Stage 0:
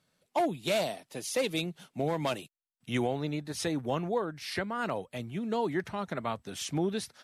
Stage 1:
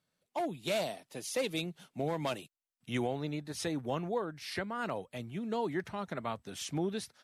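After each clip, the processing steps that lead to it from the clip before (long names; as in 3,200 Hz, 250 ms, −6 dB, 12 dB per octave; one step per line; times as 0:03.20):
automatic gain control gain up to 5 dB
level −8.5 dB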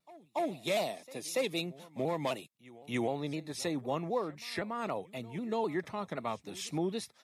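notch comb filter 1,500 Hz
echo ahead of the sound 285 ms −21 dB
pitch modulation by a square or saw wave saw down 3.9 Hz, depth 100 cents
level +1.5 dB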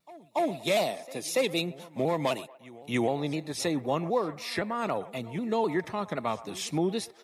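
delay with a band-pass on its return 119 ms, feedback 42%, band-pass 940 Hz, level −16 dB
level +5.5 dB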